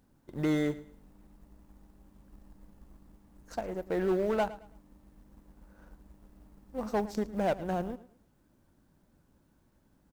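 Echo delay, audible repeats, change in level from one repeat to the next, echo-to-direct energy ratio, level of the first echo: 0.11 s, 2, -10.5 dB, -16.5 dB, -17.0 dB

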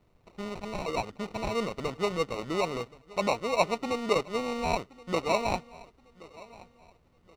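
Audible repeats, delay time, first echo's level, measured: 2, 1.075 s, -21.0 dB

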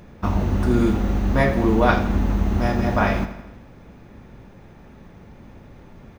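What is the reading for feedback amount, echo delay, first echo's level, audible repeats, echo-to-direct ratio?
57%, 82 ms, -13.0 dB, 5, -11.5 dB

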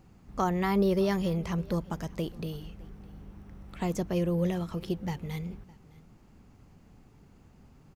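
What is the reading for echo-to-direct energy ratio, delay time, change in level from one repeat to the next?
-23.5 dB, 0.611 s, no steady repeat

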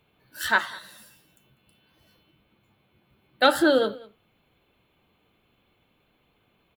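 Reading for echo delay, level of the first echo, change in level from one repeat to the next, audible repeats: 0.197 s, -22.0 dB, no steady repeat, 1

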